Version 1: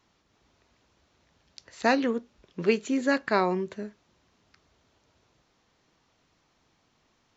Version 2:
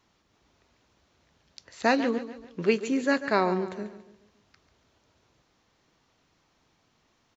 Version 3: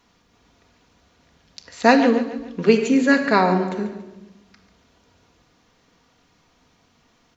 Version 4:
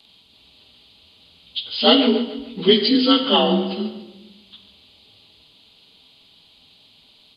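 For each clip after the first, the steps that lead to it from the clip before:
feedback delay 142 ms, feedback 43%, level -13 dB
simulated room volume 3200 m³, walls furnished, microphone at 1.8 m; trim +6.5 dB
frequency axis rescaled in octaves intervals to 88%; resonant high shelf 2.4 kHz +11.5 dB, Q 3; trim +1.5 dB

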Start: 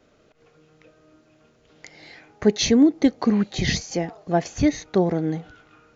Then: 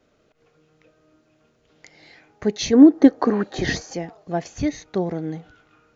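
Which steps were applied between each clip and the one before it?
time-frequency box 2.73–3.93 s, 240–1900 Hz +10 dB; trim -4 dB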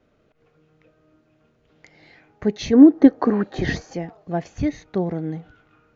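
tone controls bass +4 dB, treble -9 dB; trim -1 dB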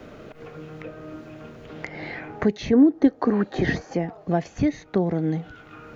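three bands compressed up and down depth 70%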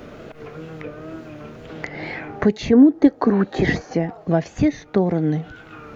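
wow and flutter 66 cents; trim +4 dB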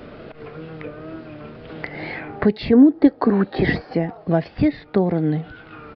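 resampled via 11.025 kHz

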